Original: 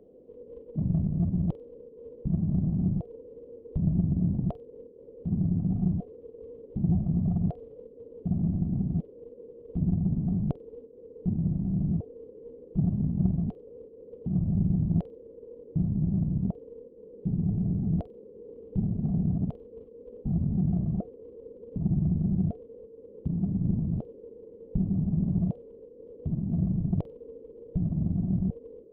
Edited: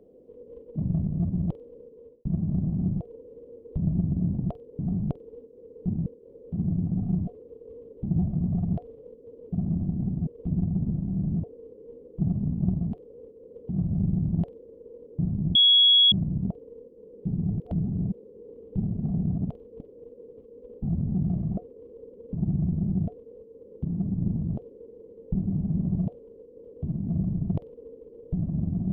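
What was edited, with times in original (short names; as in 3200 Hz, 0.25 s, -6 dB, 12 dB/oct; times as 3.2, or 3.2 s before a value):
1.93–2.25 fade out
9–9.57 move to 19.8
10.19–11.46 move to 4.79
16.12 add tone 3340 Hz -14 dBFS 0.57 s
17.6–18.12 reverse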